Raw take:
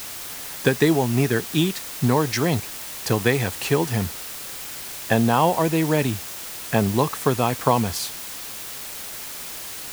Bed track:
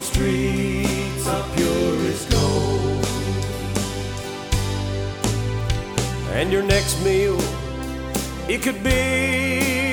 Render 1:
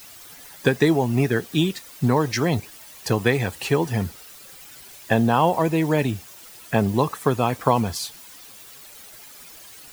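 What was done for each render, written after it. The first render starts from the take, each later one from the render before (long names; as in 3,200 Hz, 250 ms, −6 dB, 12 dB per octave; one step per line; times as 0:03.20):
broadband denoise 12 dB, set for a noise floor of −35 dBFS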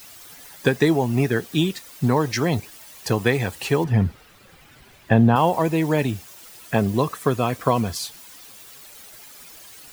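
0:03.84–0:05.36: bass and treble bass +7 dB, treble −14 dB
0:06.78–0:07.96: notch filter 860 Hz, Q 5.8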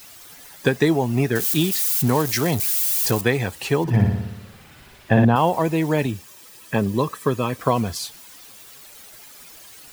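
0:01.35–0:03.21: spike at every zero crossing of −18.5 dBFS
0:03.82–0:05.25: flutter between parallel walls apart 10.1 metres, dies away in 0.94 s
0:06.06–0:07.59: notch comb filter 710 Hz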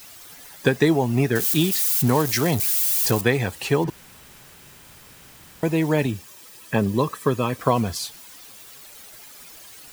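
0:03.90–0:05.63: fill with room tone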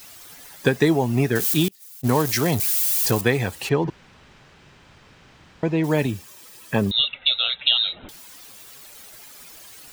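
0:01.68–0:02.09: noise gate −19 dBFS, range −31 dB
0:03.69–0:05.84: high-frequency loss of the air 150 metres
0:06.91–0:08.09: voice inversion scrambler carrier 3,900 Hz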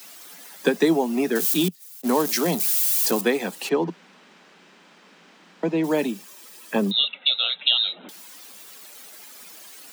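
dynamic equaliser 1,900 Hz, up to −4 dB, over −39 dBFS, Q 1.5
Butterworth high-pass 170 Hz 96 dB per octave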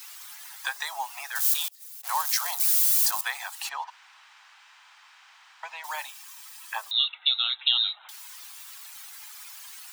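Butterworth high-pass 820 Hz 48 dB per octave
dynamic equaliser 2,600 Hz, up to −6 dB, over −40 dBFS, Q 1.8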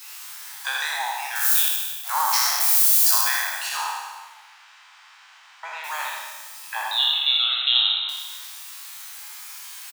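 peak hold with a decay on every bin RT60 1.42 s
on a send: single-tap delay 81 ms −4.5 dB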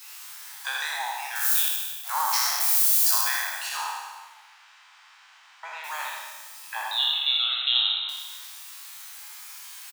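level −3.5 dB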